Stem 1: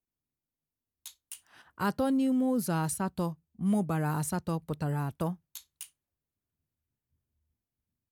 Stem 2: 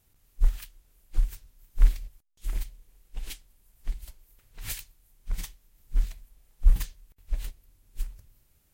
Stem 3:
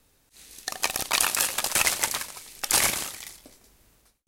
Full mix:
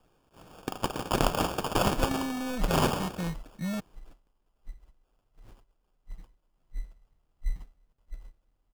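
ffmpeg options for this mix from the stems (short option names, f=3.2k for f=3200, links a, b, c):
-filter_complex "[0:a]asoftclip=type=tanh:threshold=-32dB,volume=2dB,asplit=3[a][b][c];[a]atrim=end=3.8,asetpts=PTS-STARTPTS,afade=t=out:st=3.796:d=0.004:c=hsin[d];[b]atrim=start=3.8:end=6.56,asetpts=PTS-STARTPTS,volume=0[e];[c]atrim=start=6.56,asetpts=PTS-STARTPTS,afade=t=in:d=0.004:c=hsin[f];[d][e][f]concat=n=3:v=0:a=1[g];[1:a]acrossover=split=2600[h][i];[i]acompressor=threshold=-59dB:ratio=4:attack=1:release=60[j];[h][j]amix=inputs=2:normalize=0,adelay=800,volume=-13dB[k];[2:a]volume=-3.5dB[l];[g][k][l]amix=inputs=3:normalize=0,aecho=1:1:6.3:0.34,acrusher=samples=22:mix=1:aa=0.000001"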